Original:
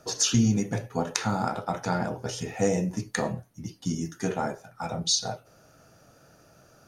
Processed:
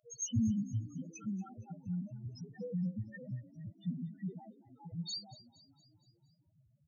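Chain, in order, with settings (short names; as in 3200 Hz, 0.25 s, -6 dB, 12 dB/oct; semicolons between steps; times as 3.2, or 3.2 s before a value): loudest bins only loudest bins 1; passive tone stack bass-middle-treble 6-0-2; frequency-shifting echo 0.233 s, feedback 55%, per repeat +35 Hz, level -18.5 dB; gain +15.5 dB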